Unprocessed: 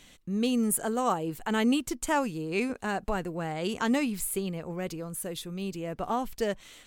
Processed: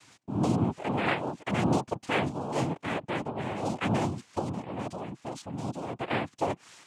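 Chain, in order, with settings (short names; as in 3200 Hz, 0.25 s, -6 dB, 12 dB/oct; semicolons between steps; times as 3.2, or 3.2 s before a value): downsampling 11025 Hz; dynamic EQ 3700 Hz, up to -8 dB, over -50 dBFS, Q 0.98; noise vocoder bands 4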